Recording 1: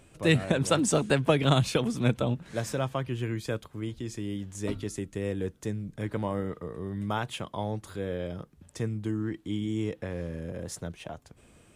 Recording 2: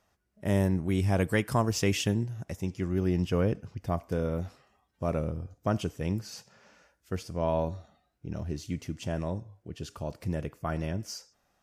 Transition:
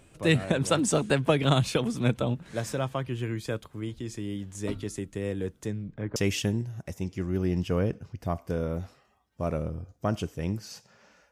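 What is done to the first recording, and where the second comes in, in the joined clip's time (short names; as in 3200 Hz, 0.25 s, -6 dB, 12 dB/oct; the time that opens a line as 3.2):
recording 1
5.67–6.16 LPF 8400 Hz -> 1100 Hz
6.16 switch to recording 2 from 1.78 s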